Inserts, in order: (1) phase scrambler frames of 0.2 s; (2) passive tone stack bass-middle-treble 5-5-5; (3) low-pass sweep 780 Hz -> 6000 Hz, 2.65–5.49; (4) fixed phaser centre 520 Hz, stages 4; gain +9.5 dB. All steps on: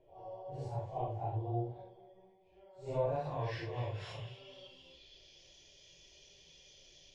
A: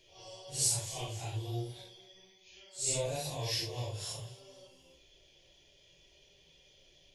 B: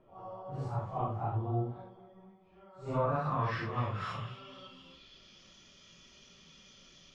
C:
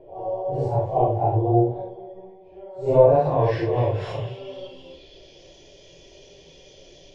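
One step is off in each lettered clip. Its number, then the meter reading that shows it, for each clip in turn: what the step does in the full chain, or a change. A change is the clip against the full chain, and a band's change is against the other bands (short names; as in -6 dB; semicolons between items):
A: 3, 4 kHz band +14.5 dB; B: 4, 500 Hz band -5.5 dB; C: 2, 4 kHz band -9.5 dB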